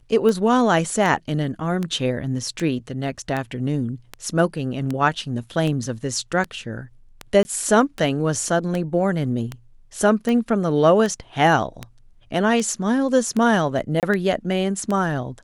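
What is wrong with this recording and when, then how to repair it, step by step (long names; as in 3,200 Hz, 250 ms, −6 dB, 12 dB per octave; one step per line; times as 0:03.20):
scratch tick 78 rpm −13 dBFS
0:07.43–0:07.45: drop-out 20 ms
0:14.00–0:14.03: drop-out 28 ms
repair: click removal
repair the gap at 0:07.43, 20 ms
repair the gap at 0:14.00, 28 ms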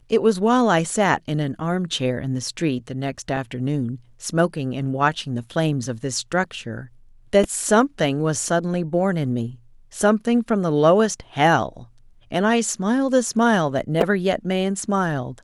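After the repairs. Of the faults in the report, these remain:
none of them is left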